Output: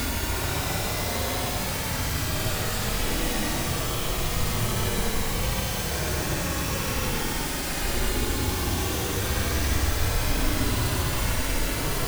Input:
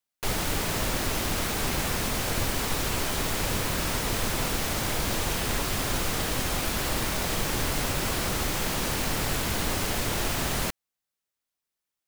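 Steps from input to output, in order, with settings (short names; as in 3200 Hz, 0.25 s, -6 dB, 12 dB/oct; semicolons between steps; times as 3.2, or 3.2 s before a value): octaver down 1 oct, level +2 dB; notches 60/120/180 Hz; Paulstretch 23×, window 0.05 s, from 7.19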